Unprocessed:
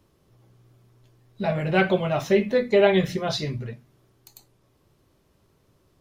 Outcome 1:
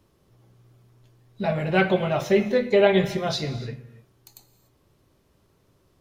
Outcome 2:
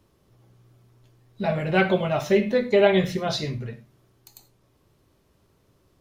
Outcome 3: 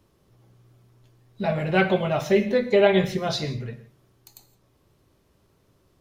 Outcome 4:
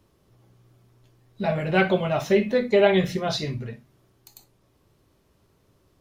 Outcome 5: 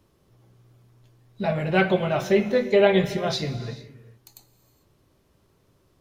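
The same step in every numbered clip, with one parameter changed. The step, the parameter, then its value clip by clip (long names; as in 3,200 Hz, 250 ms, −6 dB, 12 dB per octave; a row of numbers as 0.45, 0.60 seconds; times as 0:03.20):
reverb whose tail is shaped and stops, gate: 320, 120, 190, 80, 470 milliseconds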